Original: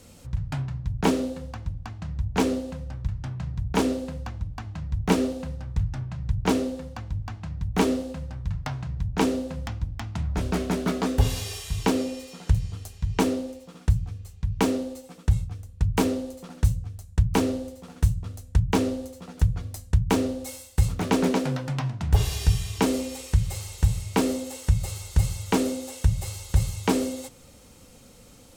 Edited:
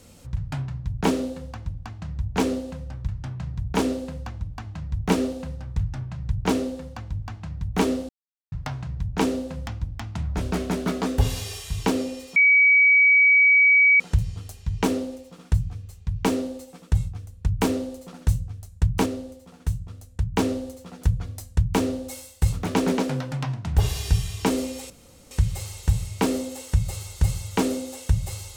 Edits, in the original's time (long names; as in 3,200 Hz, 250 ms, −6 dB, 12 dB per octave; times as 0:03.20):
0:08.09–0:08.52: silence
0:12.36: insert tone 2,270 Hz −12.5 dBFS 1.64 s
0:17.42–0:18.72: clip gain −4.5 dB
0:23.26: splice in room tone 0.41 s